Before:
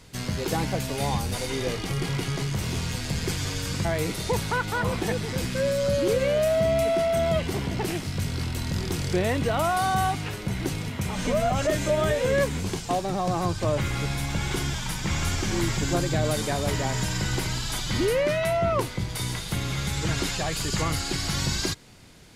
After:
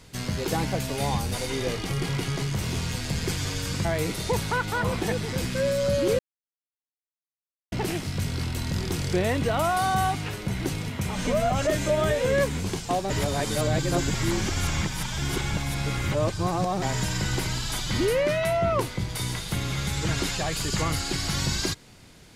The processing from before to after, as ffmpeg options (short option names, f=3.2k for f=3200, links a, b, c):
-filter_complex "[0:a]asplit=5[a][b][c][d][e];[a]atrim=end=6.19,asetpts=PTS-STARTPTS,afade=t=out:st=6.186:d=0.004:c=hsin[f];[b]atrim=start=6.19:end=7.72,asetpts=PTS-STARTPTS,volume=0[g];[c]atrim=start=7.72:end=13.102,asetpts=PTS-STARTPTS,afade=t=in:d=0.004:c=hsin[h];[d]atrim=start=13.098:end=16.822,asetpts=PTS-STARTPTS,areverse[i];[e]atrim=start=16.818[j];[f][g][h]concat=n=3:v=0:a=1[k];[k][i]acrossfade=d=0.004:c1=hsin:c2=hsin[l];[l][j]acrossfade=d=0.004:c1=hsin:c2=hsin"